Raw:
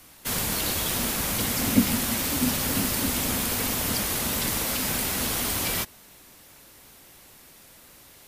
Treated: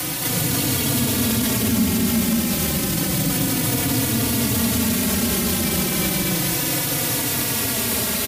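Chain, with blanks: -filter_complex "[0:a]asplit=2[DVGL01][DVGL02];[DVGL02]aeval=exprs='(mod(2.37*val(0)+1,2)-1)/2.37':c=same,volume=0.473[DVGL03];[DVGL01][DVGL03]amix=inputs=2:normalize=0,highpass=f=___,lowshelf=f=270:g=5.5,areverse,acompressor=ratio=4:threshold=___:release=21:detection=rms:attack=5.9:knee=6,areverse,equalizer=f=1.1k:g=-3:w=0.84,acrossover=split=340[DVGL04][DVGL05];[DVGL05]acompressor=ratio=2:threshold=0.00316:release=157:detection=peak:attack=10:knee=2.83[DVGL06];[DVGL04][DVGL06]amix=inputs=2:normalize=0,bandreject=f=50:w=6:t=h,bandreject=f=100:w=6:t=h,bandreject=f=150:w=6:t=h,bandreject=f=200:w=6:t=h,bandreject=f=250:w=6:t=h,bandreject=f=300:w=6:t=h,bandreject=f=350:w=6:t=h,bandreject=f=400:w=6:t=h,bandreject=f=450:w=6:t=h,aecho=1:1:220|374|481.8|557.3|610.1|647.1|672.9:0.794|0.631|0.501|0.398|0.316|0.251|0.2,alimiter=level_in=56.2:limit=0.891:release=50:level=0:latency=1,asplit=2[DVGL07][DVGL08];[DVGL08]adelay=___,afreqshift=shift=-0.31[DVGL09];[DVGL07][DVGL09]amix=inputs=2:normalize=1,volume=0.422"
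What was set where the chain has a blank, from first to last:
120, 0.01, 3.5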